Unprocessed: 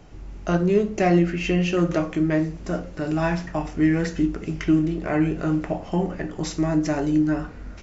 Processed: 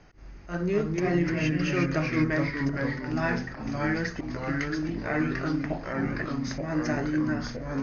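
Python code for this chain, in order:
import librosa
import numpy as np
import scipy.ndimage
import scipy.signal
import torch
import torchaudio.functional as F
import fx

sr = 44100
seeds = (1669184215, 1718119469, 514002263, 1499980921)

y = fx.auto_swell(x, sr, attack_ms=142.0)
y = fx.echo_pitch(y, sr, ms=180, semitones=-2, count=3, db_per_echo=-3.0)
y = scipy.signal.sosfilt(scipy.signal.cheby1(6, 9, 6600.0, 'lowpass', fs=sr, output='sos'), y)
y = y * 10.0 ** (1.5 / 20.0)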